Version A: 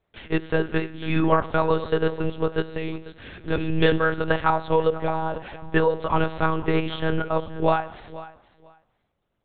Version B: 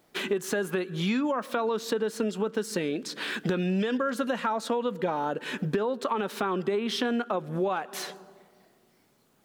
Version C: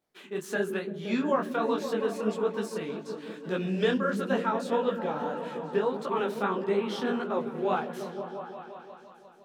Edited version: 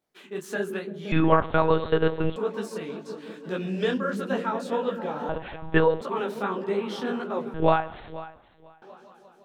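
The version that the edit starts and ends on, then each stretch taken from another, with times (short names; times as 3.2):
C
1.12–2.36 from A
5.29–6.01 from A
7.54–8.82 from A
not used: B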